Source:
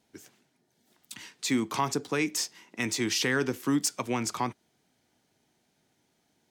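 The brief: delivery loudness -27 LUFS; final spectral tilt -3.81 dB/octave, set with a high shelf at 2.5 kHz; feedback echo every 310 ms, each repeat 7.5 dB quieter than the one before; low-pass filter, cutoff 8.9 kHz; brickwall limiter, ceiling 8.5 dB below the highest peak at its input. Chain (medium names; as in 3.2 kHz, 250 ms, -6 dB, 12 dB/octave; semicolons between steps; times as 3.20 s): low-pass 8.9 kHz; treble shelf 2.5 kHz -6.5 dB; peak limiter -24 dBFS; feedback delay 310 ms, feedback 42%, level -7.5 dB; trim +7.5 dB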